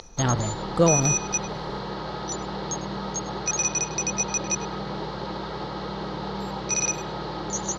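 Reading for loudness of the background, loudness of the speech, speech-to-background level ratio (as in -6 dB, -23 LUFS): -27.5 LUFS, -24.5 LUFS, 3.0 dB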